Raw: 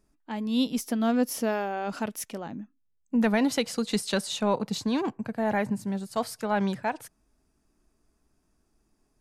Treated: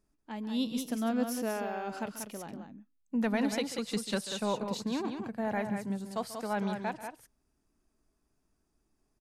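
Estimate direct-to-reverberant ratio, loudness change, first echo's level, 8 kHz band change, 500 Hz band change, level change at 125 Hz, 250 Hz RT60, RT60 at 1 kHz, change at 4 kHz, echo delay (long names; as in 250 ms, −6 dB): no reverb audible, −5.5 dB, −15.0 dB, −5.5 dB, −5.5 dB, −5.5 dB, no reverb audible, no reverb audible, −5.5 dB, 139 ms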